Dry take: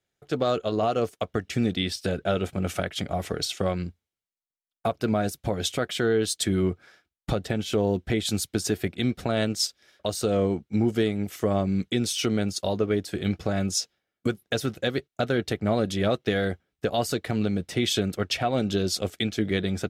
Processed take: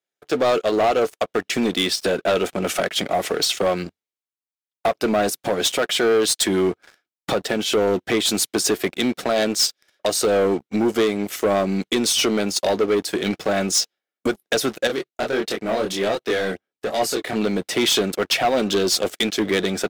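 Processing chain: HPF 310 Hz 12 dB/oct; sample leveller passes 3; 14.87–17.36 chorus voices 2, 1.4 Hz, delay 25 ms, depth 3 ms

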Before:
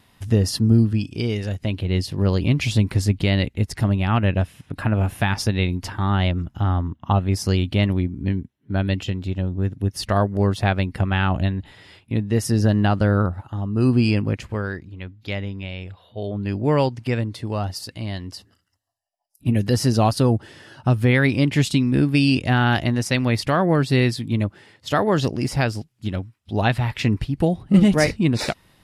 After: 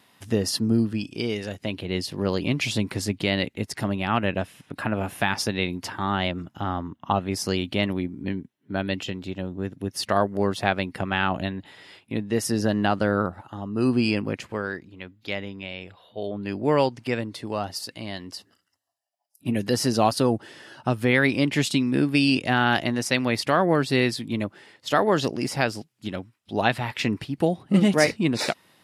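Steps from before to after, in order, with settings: Bessel high-pass 250 Hz, order 2

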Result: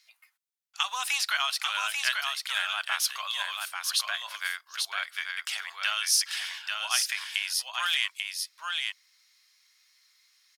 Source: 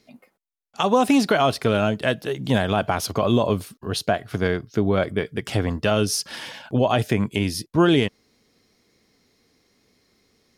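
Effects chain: Bessel high-pass 1900 Hz, order 6; on a send: echo 0.84 s -4 dB; on the sum: gain +2 dB

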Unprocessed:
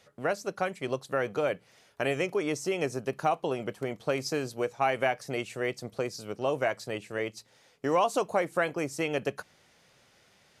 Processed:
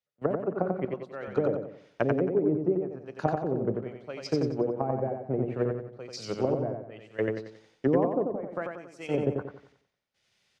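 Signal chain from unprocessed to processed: 8.3–8.92 compressor, threshold -34 dBFS, peak gain reduction 12 dB; step gate ".xxx..xxxxxxx." 71 bpm -12 dB; treble ducked by the level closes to 350 Hz, closed at -27.5 dBFS; LPF 2300 Hz 6 dB/oct; feedback echo 91 ms, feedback 49%, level -3.5 dB; three-band expander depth 70%; gain +6 dB

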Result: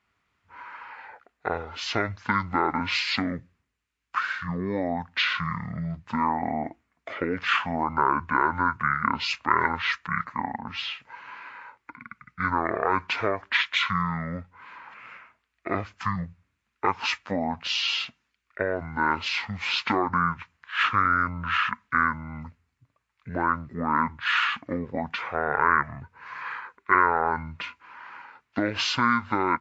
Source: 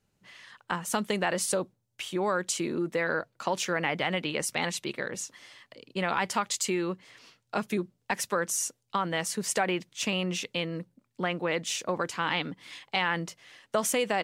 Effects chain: HPF 260 Hz 6 dB/oct; band shelf 3300 Hz +10.5 dB; wide varispeed 0.481×

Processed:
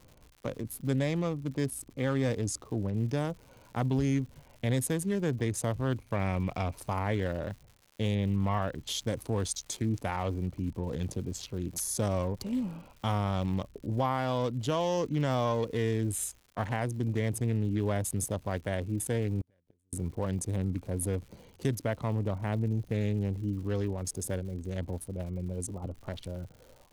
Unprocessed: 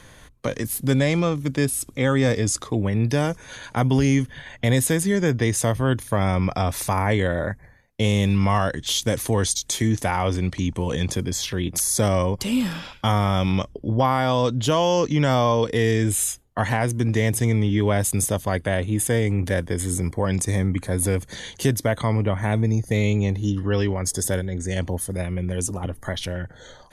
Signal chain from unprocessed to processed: Wiener smoothing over 25 samples; 5.92–6.75 bell 2300 Hz +12.5 dB 0.29 oct; 8.14–8.82 LPF 3400 Hz 12 dB/oct; crackle 170/s -36 dBFS; 19.41–19.93 flipped gate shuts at -18 dBFS, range -40 dB; gain -9 dB

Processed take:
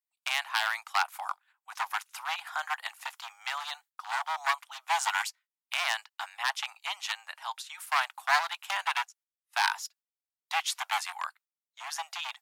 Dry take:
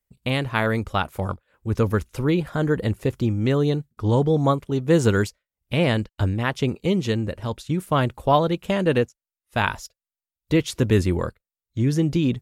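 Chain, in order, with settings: one-sided fold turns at -17.5 dBFS; steep high-pass 760 Hz 72 dB/oct; gate -56 dBFS, range -12 dB

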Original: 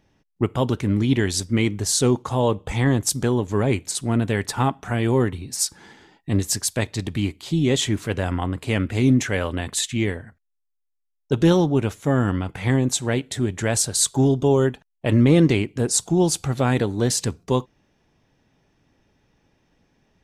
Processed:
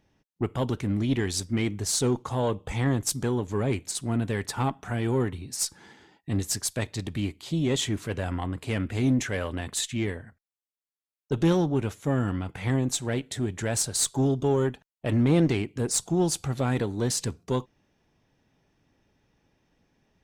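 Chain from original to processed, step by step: one diode to ground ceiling -9.5 dBFS; gain -4.5 dB

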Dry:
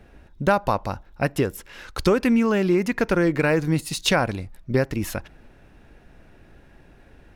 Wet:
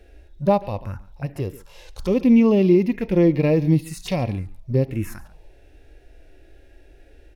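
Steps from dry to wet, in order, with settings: envelope phaser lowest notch 170 Hz, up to 1500 Hz, full sweep at -18 dBFS; outdoor echo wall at 24 m, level -23 dB; harmonic-percussive split percussive -16 dB; gain +5.5 dB

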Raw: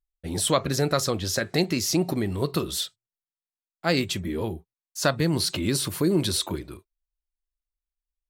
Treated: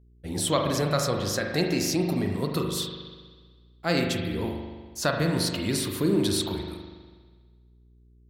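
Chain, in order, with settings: spring tank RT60 1.5 s, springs 40 ms, chirp 35 ms, DRR 2 dB; buzz 60 Hz, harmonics 7, -53 dBFS -8 dB/oct; gain -3 dB

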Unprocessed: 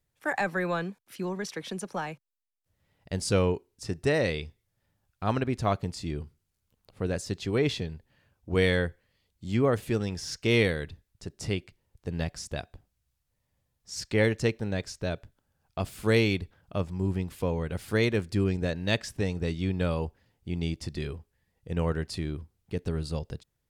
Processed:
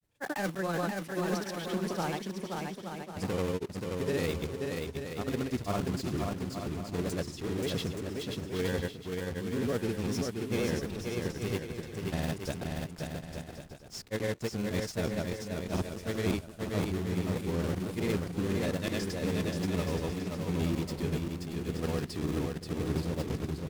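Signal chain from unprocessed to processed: block floating point 3-bit; bell 260 Hz +7.5 dB 2 oct; reverse; compressor 6:1, threshold -28 dBFS, peak gain reduction 14 dB; reverse; vibrato 5.8 Hz 49 cents; grains, pitch spread up and down by 0 st; on a send: bouncing-ball echo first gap 0.53 s, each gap 0.65×, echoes 5

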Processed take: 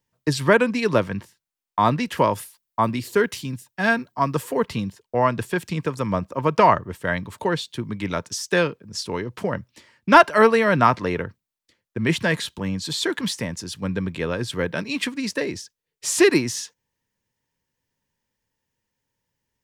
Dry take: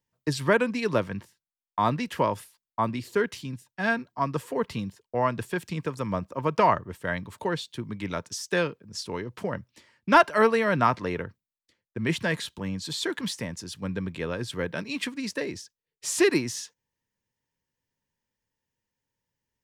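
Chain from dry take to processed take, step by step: 2.17–4.63 high shelf 9100 Hz +8.5 dB; gain +5.5 dB

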